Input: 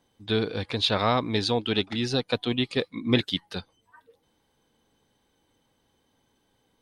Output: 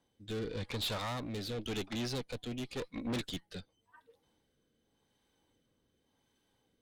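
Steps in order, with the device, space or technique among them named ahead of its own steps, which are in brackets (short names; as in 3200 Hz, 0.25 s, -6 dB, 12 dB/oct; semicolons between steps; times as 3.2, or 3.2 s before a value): overdriven rotary cabinet (tube stage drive 31 dB, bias 0.6; rotary speaker horn 0.9 Hz); gain -1.5 dB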